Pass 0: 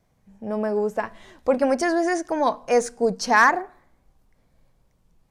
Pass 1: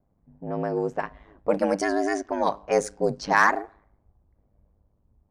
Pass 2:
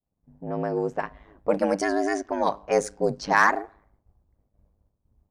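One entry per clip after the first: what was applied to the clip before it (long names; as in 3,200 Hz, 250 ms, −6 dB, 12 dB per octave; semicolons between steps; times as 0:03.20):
low-pass that shuts in the quiet parts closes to 840 Hz, open at −17 dBFS; ring modulation 51 Hz
downward expander −59 dBFS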